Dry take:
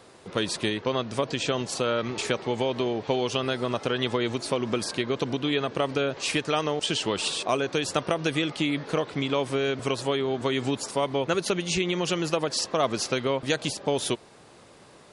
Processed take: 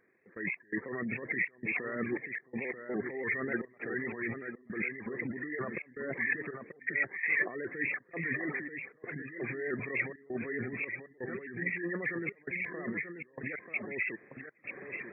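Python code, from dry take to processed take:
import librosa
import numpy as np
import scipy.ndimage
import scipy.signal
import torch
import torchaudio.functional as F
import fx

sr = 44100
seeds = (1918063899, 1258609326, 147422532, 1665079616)

p1 = fx.freq_compress(x, sr, knee_hz=1600.0, ratio=4.0)
p2 = fx.dereverb_blind(p1, sr, rt60_s=0.98)
p3 = fx.spec_gate(p2, sr, threshold_db=-30, keep='strong')
p4 = fx.low_shelf(p3, sr, hz=490.0, db=8.5)
p5 = fx.over_compress(p4, sr, threshold_db=-31.0, ratio=-1.0)
p6 = fx.cabinet(p5, sr, low_hz=200.0, low_slope=12, high_hz=2300.0, hz=(400.0, 630.0, 890.0, 1800.0), db=(3, -5, -9, 9))
p7 = fx.step_gate(p6, sr, bpm=83, pattern='..x.xxxx.xxx', floor_db=-24.0, edge_ms=4.5)
p8 = p7 + fx.echo_single(p7, sr, ms=936, db=-7.5, dry=0)
p9 = fx.vibrato_shape(p8, sr, shape='saw_up', rate_hz=3.4, depth_cents=100.0)
y = F.gain(torch.from_numpy(p9), -5.5).numpy()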